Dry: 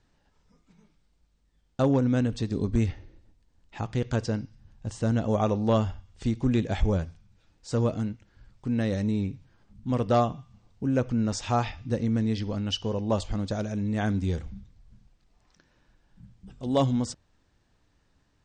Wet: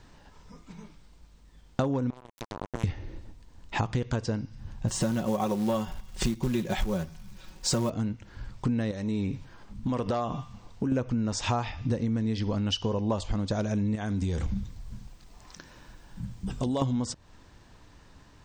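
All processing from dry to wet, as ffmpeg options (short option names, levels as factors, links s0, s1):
-filter_complex "[0:a]asettb=1/sr,asplit=3[s0][s1][s2];[s0]atrim=end=2.104[s3];[s1]atrim=start=2.1:end=2.84,asetpts=PTS-STARTPTS,afade=t=in:d=0.004:c=qsin,afade=t=out:st=0.736:d=0.004:c=qsin,acompressor=threshold=0.0316:ratio=6:attack=3.2:release=140:knee=1:detection=peak,acrusher=bits=3:mix=0:aa=0.5[s4];[s2]atrim=start=2.836[s5];[s3][s4]acrossfade=d=0.004:c1=hsin:c2=qsin[s6];[s6][s5]acrossfade=d=0.004:c1=qsin:c2=hsin,asettb=1/sr,asplit=3[s7][s8][s9];[s7]atrim=end=4.884[s10];[s8]atrim=start=4.88:end=7.9,asetpts=PTS-STARTPTS,afade=t=in:d=0.004:c=qsin,afade=t=out:st=3.016:d=0.004:c=qsin,highshelf=f=4800:g=5.5,aecho=1:1:5.4:0.76,atrim=end_sample=133182,acrusher=bits=5:mode=log:mix=0:aa=0.000001[s11];[s9]atrim=start=7.896[s12];[s10][s11]acrossfade=d=0.004:c1=hsin:c2=qsin[s13];[s13][s12]acrossfade=d=0.004:c1=qsin:c2=hsin,asettb=1/sr,asplit=3[s14][s15][s16];[s14]atrim=end=8.914[s17];[s15]atrim=start=8.91:end=10.92,asetpts=PTS-STARTPTS,afade=t=in:d=0.004:c=qsin,afade=t=out:st=2.006:d=0.004:c=qsin,equalizer=f=100:w=0.49:g=-6,acompressor=threshold=0.0158:ratio=3:attack=3.2:release=140:knee=1:detection=peak[s18];[s16]atrim=start=10.916[s19];[s17][s18]acrossfade=d=0.004:c1=hsin:c2=qsin[s20];[s20][s19]acrossfade=d=0.004:c1=qsin:c2=hsin,asettb=1/sr,asplit=3[s21][s22][s23];[s21]atrim=end=13.954[s24];[s22]atrim=start=13.95:end=16.82,asetpts=PTS-STARTPTS,afade=t=in:d=0.004:c=qsin,afade=t=out:st=2.866:d=0.004:c=qsin,acompressor=threshold=0.0178:ratio=4:attack=3.2:release=140:knee=1:detection=peak,highshelf=f=7600:g=11[s25];[s23]atrim=start=16.816[s26];[s24][s25]acrossfade=d=0.004:c1=hsin:c2=qsin[s27];[s27][s26]acrossfade=d=0.004:c1=qsin:c2=hsin,acontrast=37,equalizer=f=1000:t=o:w=0.27:g=5,acompressor=threshold=0.0224:ratio=10,volume=2.51"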